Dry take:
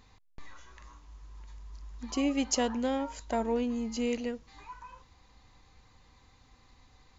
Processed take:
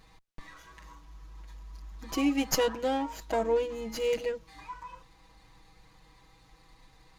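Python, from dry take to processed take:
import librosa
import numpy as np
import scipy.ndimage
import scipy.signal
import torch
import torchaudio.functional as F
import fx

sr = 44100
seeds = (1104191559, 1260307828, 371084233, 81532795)

y = x + 0.97 * np.pad(x, (int(6.2 * sr / 1000.0), 0))[:len(x)]
y = fx.running_max(y, sr, window=3)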